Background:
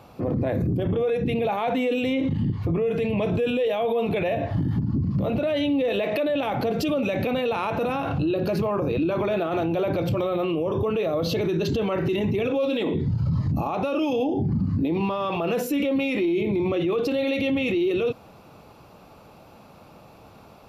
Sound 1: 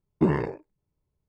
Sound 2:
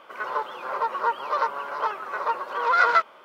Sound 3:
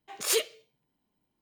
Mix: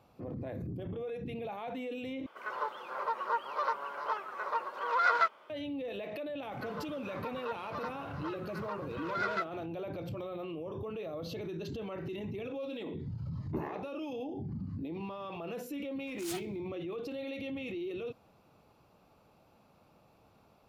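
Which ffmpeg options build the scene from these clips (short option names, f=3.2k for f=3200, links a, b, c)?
-filter_complex "[2:a]asplit=2[a][b];[0:a]volume=-15.5dB[c];[b]equalizer=f=900:t=o:w=1.1:g=-7[d];[1:a]highpass=300,lowpass=3.3k[e];[3:a]aeval=exprs='val(0)*sgn(sin(2*PI*280*n/s))':c=same[f];[c]asplit=2[g][h];[g]atrim=end=2.264[i];[a]atrim=end=3.24,asetpts=PTS-STARTPTS,volume=-8dB[j];[h]atrim=start=5.496[k];[d]atrim=end=3.24,asetpts=PTS-STARTPTS,volume=-12dB,afade=t=in:d=0.004:c=hsin,afade=t=out:st=3.236:d=0.004:c=hsin,adelay=283122S[l];[e]atrim=end=1.28,asetpts=PTS-STARTPTS,volume=-13dB,afade=t=in:d=0.004:c=hsin,afade=t=out:st=1.276:d=0.004:c=hsin,adelay=587412S[m];[f]atrim=end=1.41,asetpts=PTS-STARTPTS,volume=-15.5dB,afade=t=in:d=0.004:c=hsin,afade=t=out:st=1.406:d=0.004:c=hsin,adelay=15980[n];[i][j]acrossfade=d=0.004:c1=hsin:c2=hsin[o];[o][k]acrossfade=d=0.004:c1=hsin:c2=hsin[p];[p][l][m][n]amix=inputs=4:normalize=0"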